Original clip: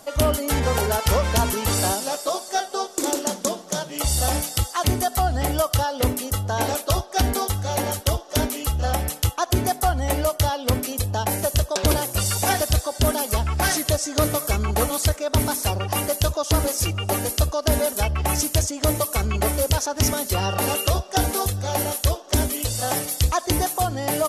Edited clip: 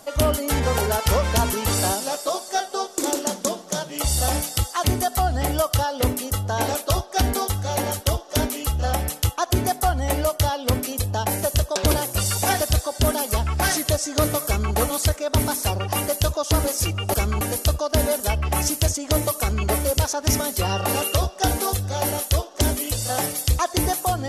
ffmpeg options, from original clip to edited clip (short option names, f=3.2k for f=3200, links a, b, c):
-filter_complex "[0:a]asplit=3[a][b][c];[a]atrim=end=17.142[d];[b]atrim=start=14.458:end=14.732[e];[c]atrim=start=17.138[f];[d][e]acrossfade=d=0.004:c1=hsin:c2=hsin[g];[g][f]acrossfade=d=0.004:c1=hsin:c2=hsin"